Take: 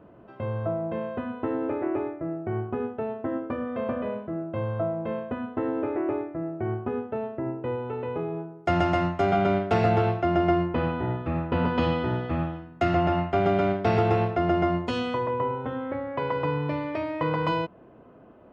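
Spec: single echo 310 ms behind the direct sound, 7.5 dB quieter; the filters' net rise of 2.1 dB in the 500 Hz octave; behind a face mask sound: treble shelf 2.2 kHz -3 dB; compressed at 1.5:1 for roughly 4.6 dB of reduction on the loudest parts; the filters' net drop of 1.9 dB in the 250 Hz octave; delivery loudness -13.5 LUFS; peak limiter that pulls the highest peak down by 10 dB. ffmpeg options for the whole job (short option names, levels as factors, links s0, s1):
-af "equalizer=f=250:t=o:g=-5,equalizer=f=500:t=o:g=4.5,acompressor=threshold=0.0316:ratio=1.5,alimiter=limit=0.0708:level=0:latency=1,highshelf=f=2200:g=-3,aecho=1:1:310:0.422,volume=8.41"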